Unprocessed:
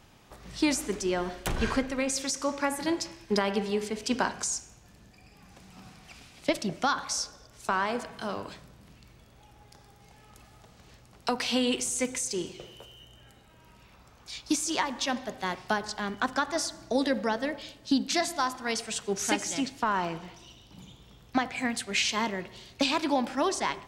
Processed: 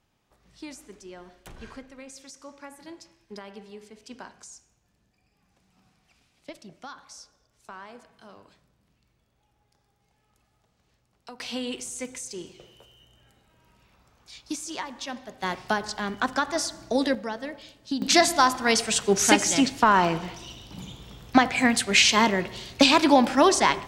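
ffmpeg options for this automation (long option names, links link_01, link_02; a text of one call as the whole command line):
ffmpeg -i in.wav -af "asetnsamples=nb_out_samples=441:pad=0,asendcmd='11.4 volume volume -5.5dB;15.42 volume volume 2.5dB;17.15 volume volume -4dB;18.02 volume volume 9dB',volume=-15dB" out.wav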